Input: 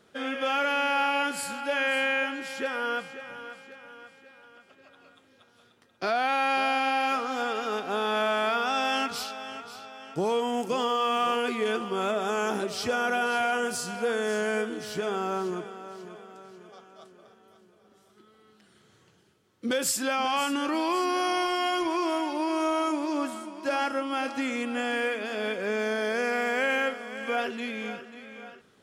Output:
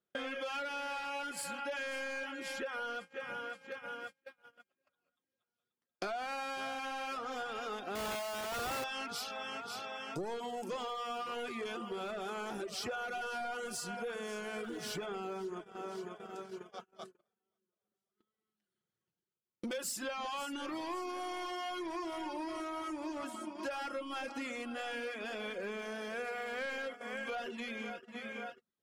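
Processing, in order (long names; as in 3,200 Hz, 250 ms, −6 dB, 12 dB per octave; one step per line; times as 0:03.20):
0:14.63–0:15.06: mu-law and A-law mismatch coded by mu
soft clipping −25 dBFS, distortion −13 dB
rectangular room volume 3,600 cubic metres, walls furnished, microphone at 0.91 metres
0:07.95–0:08.84: comparator with hysteresis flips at −33.5 dBFS
downward compressor 6 to 1, threshold −44 dBFS, peak gain reduction 16.5 dB
dynamic equaliser 170 Hz, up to −3 dB, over −59 dBFS, Q 1.6
reverb reduction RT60 0.59 s
0:04.01–0:06.05: high-shelf EQ 11,000 Hz +8.5 dB
noise gate −50 dBFS, range −37 dB
level +6.5 dB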